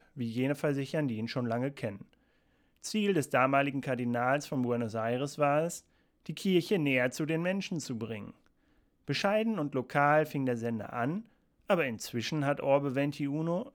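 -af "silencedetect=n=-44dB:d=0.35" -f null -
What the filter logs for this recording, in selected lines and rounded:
silence_start: 2.02
silence_end: 2.84 | silence_duration: 0.82
silence_start: 5.79
silence_end: 6.26 | silence_duration: 0.47
silence_start: 8.31
silence_end: 9.08 | silence_duration: 0.77
silence_start: 11.21
silence_end: 11.69 | silence_duration: 0.48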